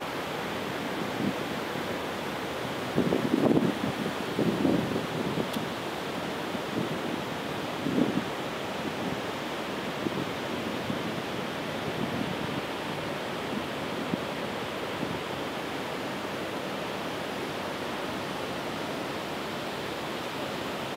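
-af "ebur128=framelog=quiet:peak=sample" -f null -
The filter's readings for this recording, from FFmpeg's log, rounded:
Integrated loudness:
  I:         -31.5 LUFS
  Threshold: -41.5 LUFS
Loudness range:
  LRA:         4.9 LU
  Threshold: -51.3 LUFS
  LRA low:   -33.2 LUFS
  LRA high:  -28.3 LUFS
Sample peak:
  Peak:       -9.3 dBFS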